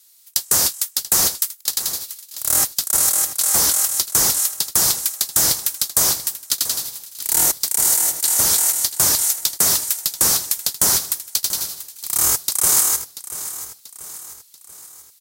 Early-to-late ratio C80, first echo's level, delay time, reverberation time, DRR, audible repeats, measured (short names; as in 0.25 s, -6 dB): none, -13.5 dB, 0.686 s, none, none, 4